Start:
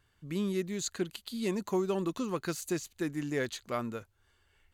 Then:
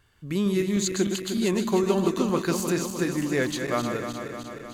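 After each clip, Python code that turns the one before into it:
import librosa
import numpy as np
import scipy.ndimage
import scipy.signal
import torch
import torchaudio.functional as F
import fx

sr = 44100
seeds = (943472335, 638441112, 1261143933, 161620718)

y = fx.reverse_delay_fb(x, sr, ms=153, feedback_pct=79, wet_db=-7.0)
y = y * librosa.db_to_amplitude(7.0)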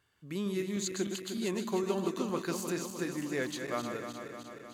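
y = fx.highpass(x, sr, hz=170.0, slope=6)
y = y * librosa.db_to_amplitude(-8.0)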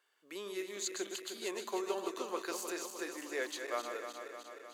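y = scipy.signal.sosfilt(scipy.signal.butter(4, 390.0, 'highpass', fs=sr, output='sos'), x)
y = y * librosa.db_to_amplitude(-1.5)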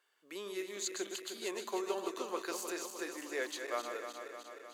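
y = fx.hum_notches(x, sr, base_hz=60, count=2)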